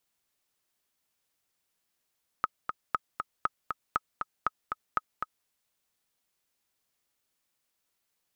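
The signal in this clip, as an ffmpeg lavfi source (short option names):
-f lavfi -i "aevalsrc='pow(10,(-12.5-5.5*gte(mod(t,2*60/237),60/237))/20)*sin(2*PI*1270*mod(t,60/237))*exp(-6.91*mod(t,60/237)/0.03)':d=3.03:s=44100"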